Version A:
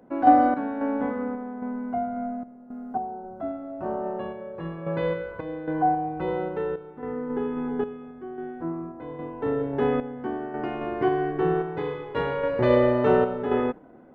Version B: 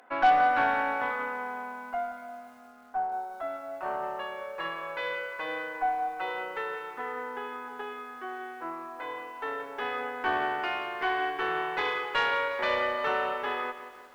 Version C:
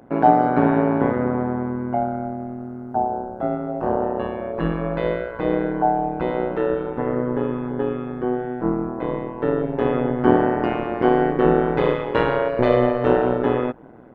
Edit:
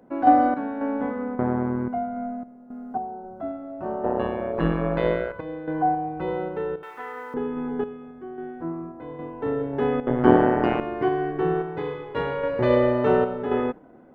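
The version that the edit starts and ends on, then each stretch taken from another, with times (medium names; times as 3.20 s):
A
1.39–1.88 s: from C
4.04–5.32 s: from C
6.83–7.34 s: from B
10.07–10.80 s: from C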